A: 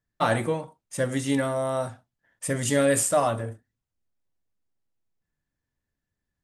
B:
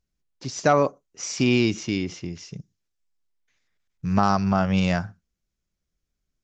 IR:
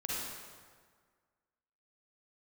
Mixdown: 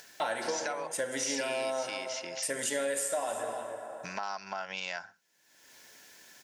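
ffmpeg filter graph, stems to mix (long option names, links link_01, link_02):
-filter_complex "[0:a]highpass=480,volume=-3dB,asplit=3[link_01][link_02][link_03];[link_02]volume=-8.5dB[link_04];[link_03]volume=-14dB[link_05];[1:a]acompressor=threshold=-28dB:ratio=3,highpass=950,volume=1dB[link_06];[2:a]atrim=start_sample=2205[link_07];[link_04][link_07]afir=irnorm=-1:irlink=0[link_08];[link_05]aecho=0:1:307:1[link_09];[link_01][link_06][link_08][link_09]amix=inputs=4:normalize=0,acompressor=mode=upward:threshold=-30dB:ratio=2.5,asuperstop=centerf=1200:order=4:qfactor=5.9,acompressor=threshold=-29dB:ratio=6"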